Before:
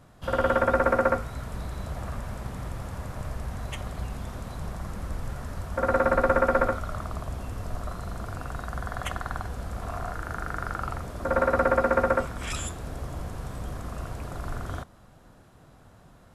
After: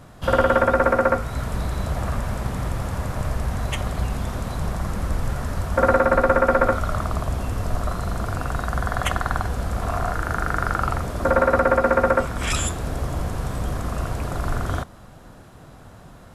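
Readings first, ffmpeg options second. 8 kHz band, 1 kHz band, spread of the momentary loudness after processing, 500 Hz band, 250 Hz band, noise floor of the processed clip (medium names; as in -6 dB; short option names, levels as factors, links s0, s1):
+9.0 dB, +6.0 dB, 10 LU, +5.5 dB, +6.5 dB, -45 dBFS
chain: -af "alimiter=limit=0.2:level=0:latency=1:release=270,volume=2.82"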